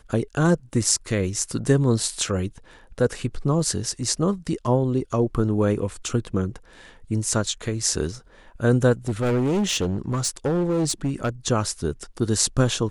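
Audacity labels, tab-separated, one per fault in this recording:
9.080000	11.290000	clipped -18.5 dBFS

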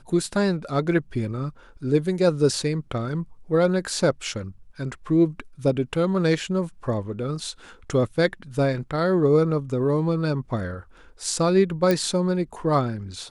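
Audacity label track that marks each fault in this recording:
11.910000	11.910000	pop -9 dBFS

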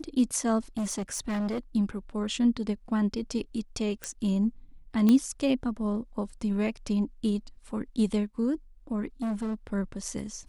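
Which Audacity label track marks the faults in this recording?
0.770000	1.590000	clipped -27 dBFS
4.040000	4.040000	pop -17 dBFS
5.090000	5.090000	pop -12 dBFS
9.220000	9.550000	clipped -27.5 dBFS

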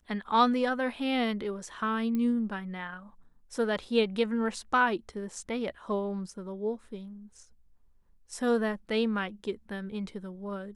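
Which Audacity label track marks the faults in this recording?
2.150000	2.150000	pop -21 dBFS

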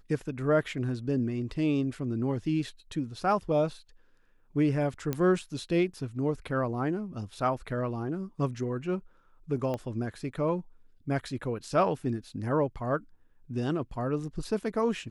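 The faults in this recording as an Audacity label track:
5.130000	5.130000	pop -16 dBFS
9.740000	9.740000	pop -21 dBFS

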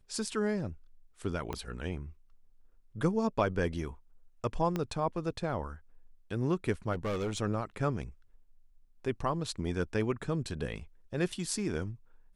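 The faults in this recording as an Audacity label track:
1.530000	1.530000	pop -21 dBFS
4.760000	4.760000	pop -19 dBFS
6.920000	7.380000	clipped -29.5 dBFS
11.320000	11.320000	dropout 4.1 ms

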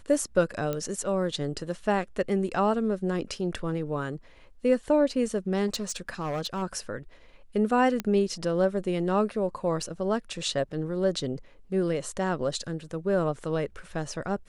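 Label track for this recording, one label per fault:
0.730000	0.730000	pop -17 dBFS
5.670000	6.630000	clipped -26.5 dBFS
8.000000	8.000000	pop -14 dBFS
9.820000	9.820000	dropout 3.5 ms

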